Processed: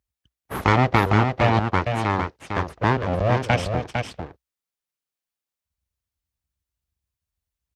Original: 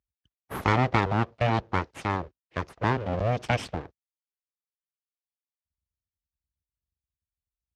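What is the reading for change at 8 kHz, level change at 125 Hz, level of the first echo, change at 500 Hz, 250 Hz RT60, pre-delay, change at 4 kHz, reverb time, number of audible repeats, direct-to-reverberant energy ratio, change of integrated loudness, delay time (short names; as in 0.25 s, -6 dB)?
+6.0 dB, +6.5 dB, -5.5 dB, +6.0 dB, none, none, +6.0 dB, none, 1, none, +6.0 dB, 0.454 s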